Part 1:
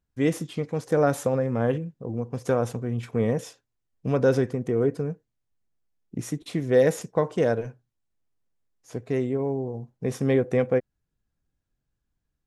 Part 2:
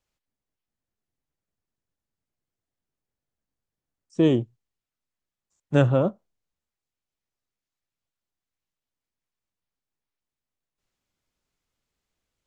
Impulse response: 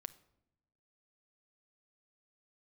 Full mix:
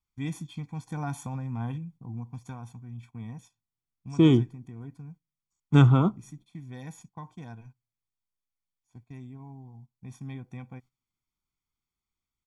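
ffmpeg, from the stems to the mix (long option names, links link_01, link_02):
-filter_complex "[0:a]aecho=1:1:1.2:0.72,volume=-13dB,afade=type=out:start_time=2.17:duration=0.43:silence=0.421697,asplit=2[link_01][link_02];[link_02]volume=-18.5dB[link_03];[1:a]volume=-2dB,asplit=2[link_04][link_05];[link_05]volume=-14.5dB[link_06];[2:a]atrim=start_sample=2205[link_07];[link_03][link_06]amix=inputs=2:normalize=0[link_08];[link_08][link_07]afir=irnorm=-1:irlink=0[link_09];[link_01][link_04][link_09]amix=inputs=3:normalize=0,agate=range=-11dB:threshold=-54dB:ratio=16:detection=peak,aecho=1:1:0.9:0.9"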